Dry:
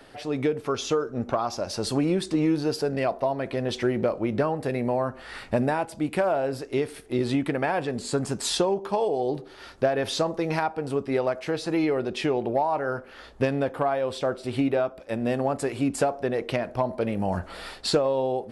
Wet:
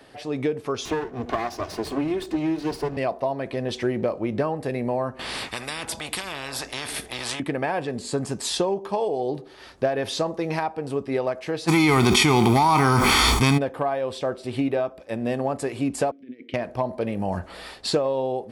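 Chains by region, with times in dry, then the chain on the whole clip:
0.85–2.97 minimum comb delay 2.8 ms + tone controls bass +3 dB, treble -6 dB + three-band squash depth 70%
5.19–7.4 small resonant body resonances 250/3500 Hz, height 9 dB, ringing for 20 ms + spectral compressor 10:1
11.67–13.57 spectral whitening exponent 0.6 + comb 0.9 ms, depth 84% + fast leveller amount 100%
16.11–16.54 negative-ratio compressor -29 dBFS, ratio -0.5 + vowel filter i
whole clip: HPF 42 Hz; notch 1400 Hz, Q 12

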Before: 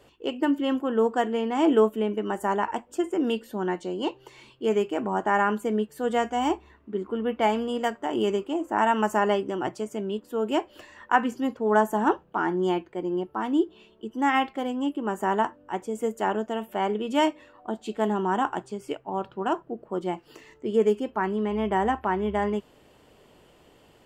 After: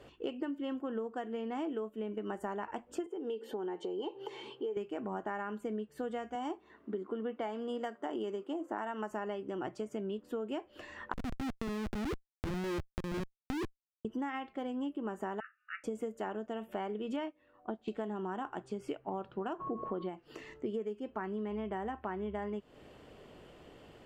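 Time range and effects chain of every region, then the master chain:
3.06–4.77 HPF 190 Hz + compressor 2.5:1, threshold -48 dBFS + small resonant body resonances 430/830/3100 Hz, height 15 dB, ringing for 35 ms
6.35–9.11 HPF 210 Hz + bell 2500 Hz -6 dB 0.29 oct
11.13–14.05 inverse Chebyshev band-stop 1400–2900 Hz, stop band 80 dB + transient shaper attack -3 dB, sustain +6 dB + Schmitt trigger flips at -27.5 dBFS
15.4–15.84 brick-wall FIR band-pass 1200–2900 Hz + doubler 18 ms -13.5 dB
17.16–17.88 LPF 3700 Hz + upward expander, over -42 dBFS
19.59–20.08 whine 1100 Hz -45 dBFS + brick-wall FIR low-pass 4800 Hz + fast leveller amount 50%
whole clip: LPF 3100 Hz 6 dB/oct; bell 920 Hz -4.5 dB 0.28 oct; compressor 16:1, threshold -36 dBFS; gain +2 dB

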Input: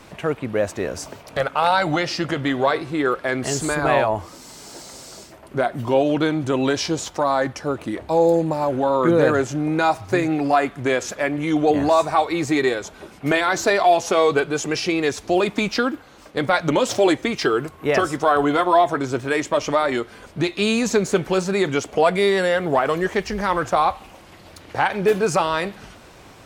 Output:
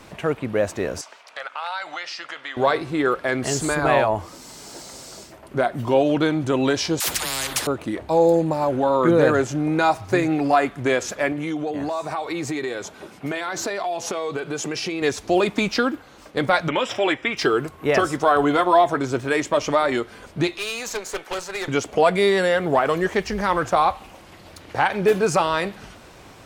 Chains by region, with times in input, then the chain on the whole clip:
1.01–2.57 HPF 1100 Hz + compressor 2:1, threshold -29 dBFS + air absorption 62 m
7–7.67 high shelf 9600 Hz +8 dB + dispersion lows, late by 83 ms, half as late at 470 Hz + spectral compressor 10:1
11.32–15.02 HPF 100 Hz + compressor, threshold -23 dBFS
16.68–17.37 polynomial smoothing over 25 samples + tilt shelf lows -8 dB, about 1100 Hz
20.57–21.68 HPF 650 Hz + transient shaper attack +8 dB, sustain 0 dB + tube stage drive 23 dB, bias 0.55
whole clip: dry

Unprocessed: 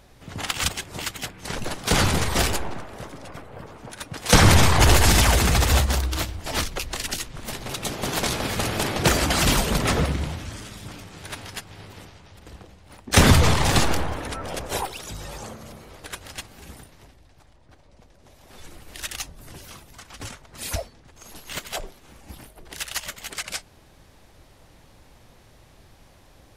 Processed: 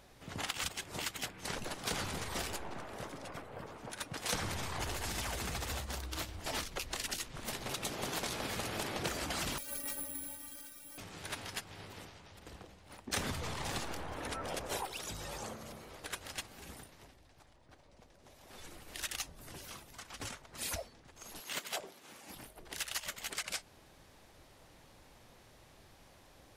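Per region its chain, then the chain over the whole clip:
9.58–10.98 metallic resonator 280 Hz, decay 0.2 s, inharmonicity 0.008 + careless resampling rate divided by 4×, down none, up zero stuff + Butterworth band-stop 1000 Hz, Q 6
21.4–22.35 HPF 170 Hz + mismatched tape noise reduction encoder only
whole clip: compressor 6:1, threshold -29 dBFS; low shelf 170 Hz -6.5 dB; gain -5 dB

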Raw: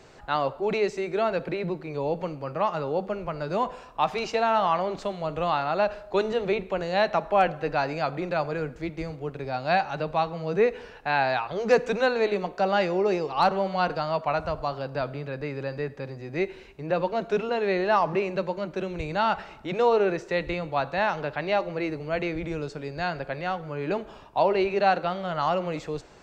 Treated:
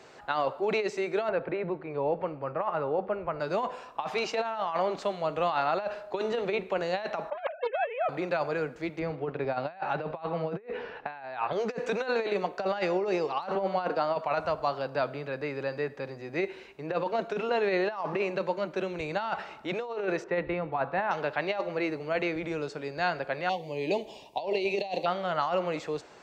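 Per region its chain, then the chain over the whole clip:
1.29–3.4 LPF 2000 Hz + resonant low shelf 130 Hz +6.5 dB, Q 1.5
7.3–8.09 sine-wave speech + Doppler distortion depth 0.25 ms
8.99–11.53 negative-ratio compressor -31 dBFS, ratio -0.5 + air absorption 260 m
13.55–14.16 HPF 200 Hz 24 dB/oct + tilt -2 dB/oct
20.24–21.11 LPF 1900 Hz + low shelf 160 Hz +5.5 dB + notch 580 Hz, Q 14
23.49–25.06 Butterworth band-stop 1400 Hz, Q 0.95 + high shelf 2500 Hz +9 dB
whole clip: HPF 370 Hz 6 dB/oct; high shelf 4100 Hz -4 dB; negative-ratio compressor -27 dBFS, ratio -0.5

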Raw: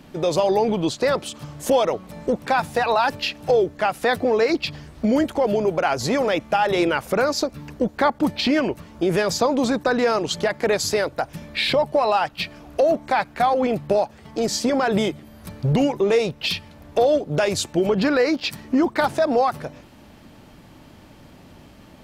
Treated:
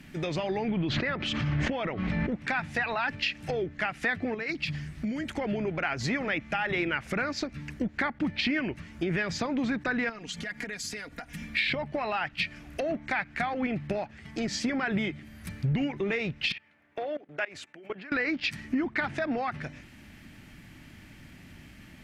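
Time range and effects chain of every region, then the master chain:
0.71–2.32 air absorption 170 m + backwards sustainer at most 27 dB/s
4.34–5.27 compressor 4:1, threshold -25 dBFS + bell 160 Hz +10 dB 0.33 oct
10.09–11.56 compressor, threshold -31 dBFS + comb 4.2 ms
16.52–18.12 HPF 96 Hz + three-band isolator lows -17 dB, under 340 Hz, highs -16 dB, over 2800 Hz + level quantiser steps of 20 dB
whole clip: treble ducked by the level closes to 2900 Hz, closed at -17 dBFS; graphic EQ 500/1000/2000/4000 Hz -11/-9/+9/-4 dB; compressor 2.5:1, threshold -25 dBFS; gain -1.5 dB

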